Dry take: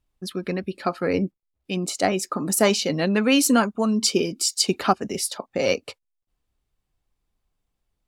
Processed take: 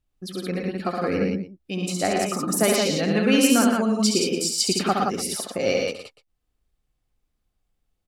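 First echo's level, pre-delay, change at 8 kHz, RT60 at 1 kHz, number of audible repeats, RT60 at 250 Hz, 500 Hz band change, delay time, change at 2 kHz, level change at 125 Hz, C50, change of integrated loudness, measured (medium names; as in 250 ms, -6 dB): -5.0 dB, no reverb, 0.0 dB, no reverb, 4, no reverb, 0.0 dB, 68 ms, 0.0 dB, +1.0 dB, no reverb, +0.5 dB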